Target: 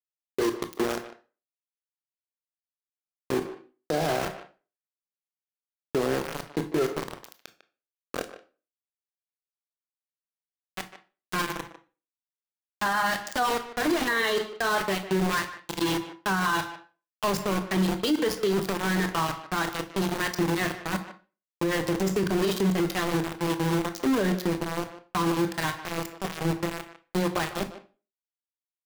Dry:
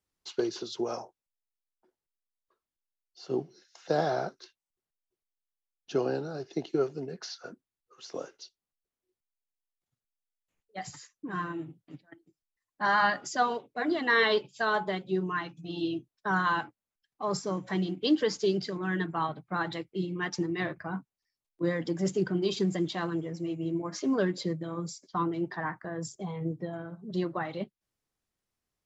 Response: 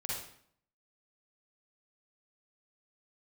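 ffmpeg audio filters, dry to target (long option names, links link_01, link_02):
-filter_complex "[0:a]aeval=exprs='val(0)*gte(abs(val(0)),0.0316)':channel_layout=same,asplit=2[link_01][link_02];[1:a]atrim=start_sample=2205,asetrate=88200,aresample=44100[link_03];[link_02][link_03]afir=irnorm=-1:irlink=0,volume=-3dB[link_04];[link_01][link_04]amix=inputs=2:normalize=0,alimiter=limit=-23dB:level=0:latency=1:release=35,asplit=2[link_05][link_06];[link_06]adelay=150,highpass=300,lowpass=3400,asoftclip=type=hard:threshold=-31.5dB,volume=-11dB[link_07];[link_05][link_07]amix=inputs=2:normalize=0,volume=6dB"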